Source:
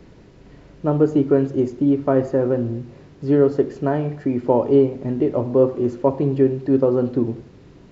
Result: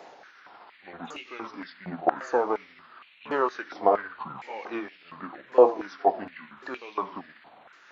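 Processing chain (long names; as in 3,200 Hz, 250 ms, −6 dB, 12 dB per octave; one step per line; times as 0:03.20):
pitch shifter swept by a sawtooth −11 semitones, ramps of 1,104 ms
echo ahead of the sound 53 ms −20.5 dB
high-pass on a step sequencer 4.3 Hz 720–2,500 Hz
level +3.5 dB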